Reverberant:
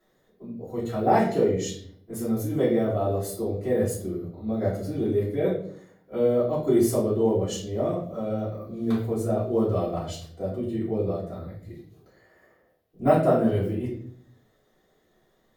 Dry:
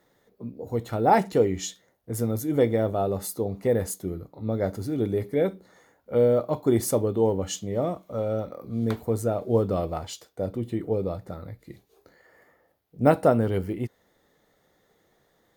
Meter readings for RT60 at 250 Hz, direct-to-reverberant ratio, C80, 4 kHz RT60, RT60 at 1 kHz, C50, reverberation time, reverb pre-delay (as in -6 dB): 0.85 s, -9.5 dB, 8.5 dB, 0.45 s, 0.45 s, 5.0 dB, 0.55 s, 3 ms